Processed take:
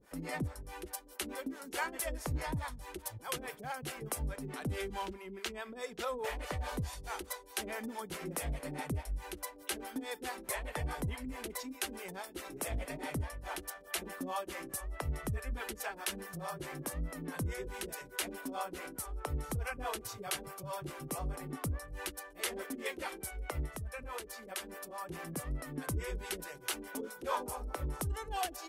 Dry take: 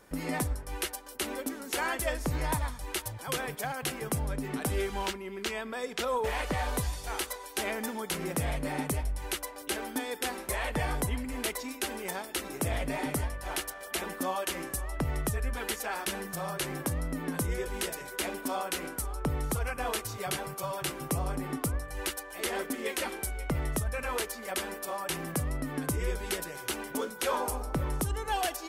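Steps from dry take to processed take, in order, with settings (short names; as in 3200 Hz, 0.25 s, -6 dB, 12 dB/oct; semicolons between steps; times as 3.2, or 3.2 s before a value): 23.65–25.08 compressor, threshold -33 dBFS, peak gain reduction 7 dB; harmonic tremolo 4.7 Hz, depth 100%, crossover 430 Hz; gain -1.5 dB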